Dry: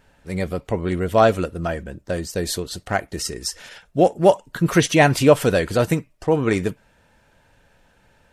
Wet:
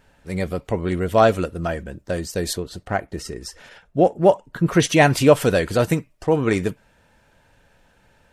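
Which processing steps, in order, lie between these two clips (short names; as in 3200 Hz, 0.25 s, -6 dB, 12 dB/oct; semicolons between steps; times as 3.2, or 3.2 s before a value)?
2.53–4.8 high shelf 2600 Hz -10.5 dB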